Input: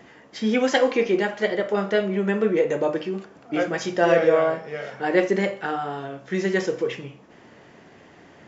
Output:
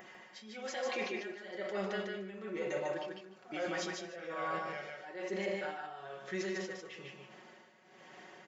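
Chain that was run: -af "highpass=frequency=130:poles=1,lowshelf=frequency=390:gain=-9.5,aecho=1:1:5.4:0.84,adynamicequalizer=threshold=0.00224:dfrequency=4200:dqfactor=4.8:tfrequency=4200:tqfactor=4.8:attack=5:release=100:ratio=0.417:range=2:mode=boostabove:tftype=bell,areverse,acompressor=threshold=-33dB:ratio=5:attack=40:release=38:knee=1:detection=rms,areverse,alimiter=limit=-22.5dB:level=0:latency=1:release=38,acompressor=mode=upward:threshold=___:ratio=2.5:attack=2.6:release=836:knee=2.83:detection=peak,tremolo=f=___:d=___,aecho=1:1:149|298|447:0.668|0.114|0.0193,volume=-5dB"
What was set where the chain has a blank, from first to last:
-43dB, 1.1, 0.81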